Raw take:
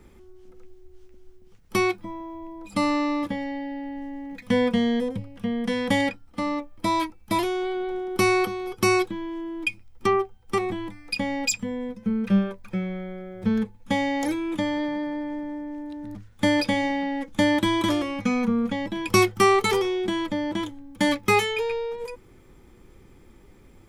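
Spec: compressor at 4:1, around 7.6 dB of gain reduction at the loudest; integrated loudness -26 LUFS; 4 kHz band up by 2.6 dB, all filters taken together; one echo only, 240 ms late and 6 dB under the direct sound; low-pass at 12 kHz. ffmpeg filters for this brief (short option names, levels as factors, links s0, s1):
-af "lowpass=12000,equalizer=f=4000:t=o:g=3.5,acompressor=threshold=0.0708:ratio=4,aecho=1:1:240:0.501,volume=1.26"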